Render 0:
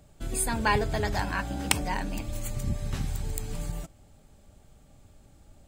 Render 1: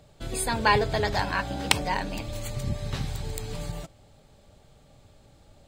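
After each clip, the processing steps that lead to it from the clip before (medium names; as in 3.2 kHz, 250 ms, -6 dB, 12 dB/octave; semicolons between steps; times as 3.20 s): graphic EQ 125/500/1000/2000/4000 Hz +6/+8/+5/+4/+10 dB; trim -3.5 dB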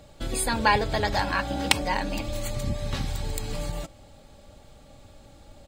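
comb 3.6 ms, depth 36%; in parallel at +0.5 dB: compression, threshold -34 dBFS, peak gain reduction 18.5 dB; on the sum: crackle 29 per s -53 dBFS; trim -1.5 dB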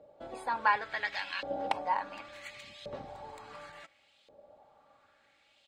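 LFO band-pass saw up 0.7 Hz 500–3400 Hz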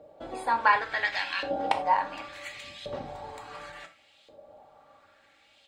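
gated-style reverb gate 120 ms falling, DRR 5.5 dB; trim +5 dB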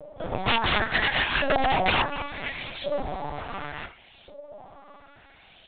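pre-echo 38 ms -19 dB; integer overflow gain 23 dB; LPC vocoder at 8 kHz pitch kept; trim +8.5 dB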